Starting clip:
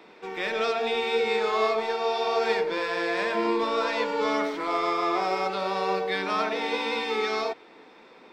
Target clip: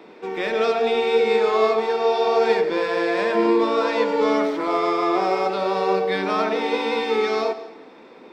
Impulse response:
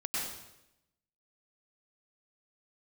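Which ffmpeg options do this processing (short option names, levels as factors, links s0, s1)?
-filter_complex "[0:a]equalizer=f=310:w=0.47:g=7.5,asplit=2[s0][s1];[1:a]atrim=start_sample=2205[s2];[s1][s2]afir=irnorm=-1:irlink=0,volume=0.158[s3];[s0][s3]amix=inputs=2:normalize=0"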